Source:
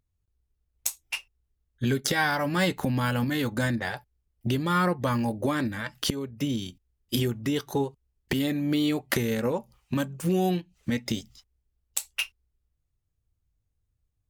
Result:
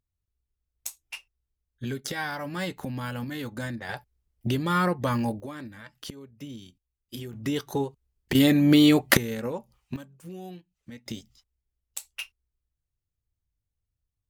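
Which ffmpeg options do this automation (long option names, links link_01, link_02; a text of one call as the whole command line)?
ffmpeg -i in.wav -af "asetnsamples=nb_out_samples=441:pad=0,asendcmd='3.89 volume volume 0dB;5.4 volume volume -12dB;7.33 volume volume -1dB;8.35 volume volume 8dB;9.17 volume volume -4.5dB;9.96 volume volume -16dB;11.06 volume volume -7dB',volume=-7dB" out.wav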